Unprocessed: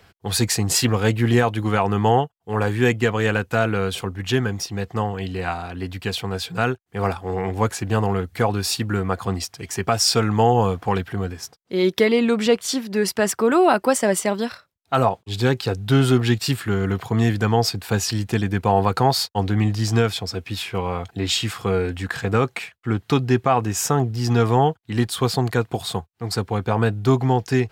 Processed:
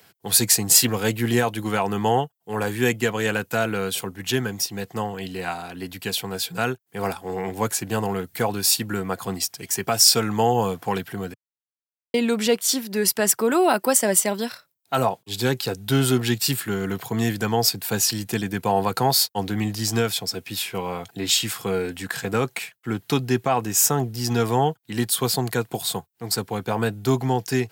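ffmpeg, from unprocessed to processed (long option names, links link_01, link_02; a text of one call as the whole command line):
ffmpeg -i in.wav -filter_complex "[0:a]asplit=3[link_01][link_02][link_03];[link_01]atrim=end=11.34,asetpts=PTS-STARTPTS,afade=type=out:start_time=11.336:duration=0.004:curve=hsin[link_04];[link_02]atrim=start=11.34:end=12.14,asetpts=PTS-STARTPTS,volume=0[link_05];[link_03]atrim=start=12.14,asetpts=PTS-STARTPTS,afade=type=in:duration=0.004:curve=hsin[link_06];[link_04][link_05][link_06]concat=n=3:v=0:a=1,highpass=frequency=120:width=0.5412,highpass=frequency=120:width=1.3066,aemphasis=mode=production:type=50fm,bandreject=frequency=1200:width=14,volume=-2.5dB" out.wav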